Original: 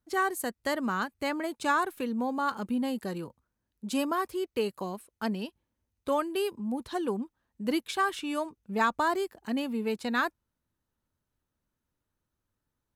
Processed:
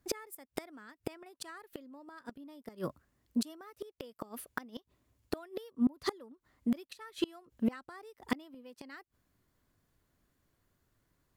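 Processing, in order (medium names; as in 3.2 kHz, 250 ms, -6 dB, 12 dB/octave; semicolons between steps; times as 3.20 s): dynamic bell 950 Hz, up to -4 dB, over -39 dBFS, Q 2.5; inverted gate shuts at -27 dBFS, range -29 dB; tape speed +14%; trim +8 dB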